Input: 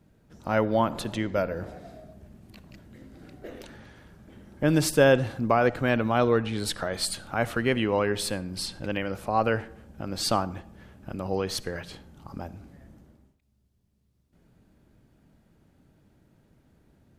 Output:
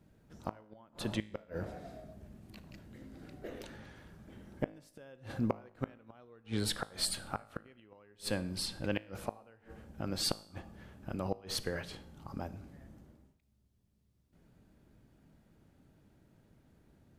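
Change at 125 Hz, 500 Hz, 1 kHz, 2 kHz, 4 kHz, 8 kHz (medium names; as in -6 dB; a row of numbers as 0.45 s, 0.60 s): -11.0 dB, -16.5 dB, -16.5 dB, -15.5 dB, -6.0 dB, -7.5 dB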